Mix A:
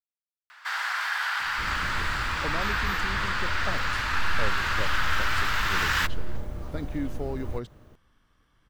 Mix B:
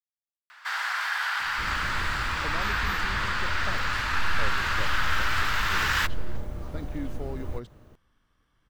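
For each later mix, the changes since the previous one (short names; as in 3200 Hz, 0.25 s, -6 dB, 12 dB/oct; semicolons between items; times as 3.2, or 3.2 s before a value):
speech -4.0 dB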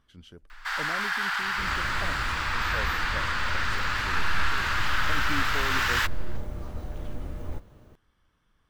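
speech: entry -1.65 s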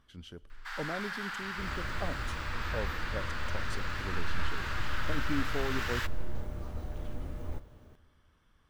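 first sound -12.0 dB; second sound -6.0 dB; reverb: on, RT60 2.4 s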